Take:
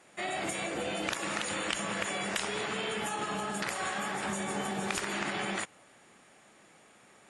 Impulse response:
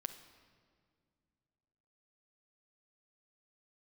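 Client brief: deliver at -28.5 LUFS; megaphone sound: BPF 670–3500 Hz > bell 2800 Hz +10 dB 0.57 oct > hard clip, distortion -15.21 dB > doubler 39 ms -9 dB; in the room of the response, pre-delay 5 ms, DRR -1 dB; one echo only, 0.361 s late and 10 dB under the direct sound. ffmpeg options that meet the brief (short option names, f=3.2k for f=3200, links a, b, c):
-filter_complex "[0:a]aecho=1:1:361:0.316,asplit=2[a][b];[1:a]atrim=start_sample=2205,adelay=5[c];[b][c]afir=irnorm=-1:irlink=0,volume=3dB[d];[a][d]amix=inputs=2:normalize=0,highpass=670,lowpass=3.5k,equalizer=f=2.8k:t=o:w=0.57:g=10,asoftclip=type=hard:threshold=-22.5dB,asplit=2[e][f];[f]adelay=39,volume=-9dB[g];[e][g]amix=inputs=2:normalize=0"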